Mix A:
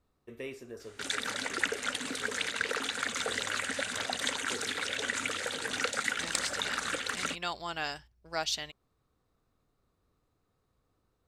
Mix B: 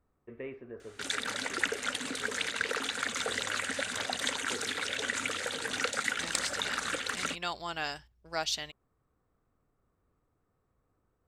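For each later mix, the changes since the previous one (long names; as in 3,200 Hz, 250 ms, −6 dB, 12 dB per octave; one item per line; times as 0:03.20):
first voice: add low-pass filter 2,200 Hz 24 dB per octave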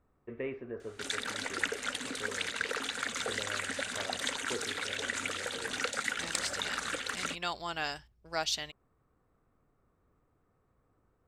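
first voice +4.0 dB
reverb: off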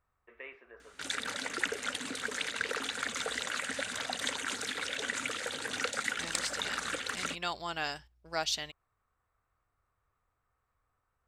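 first voice: add high-pass filter 1,000 Hz 12 dB per octave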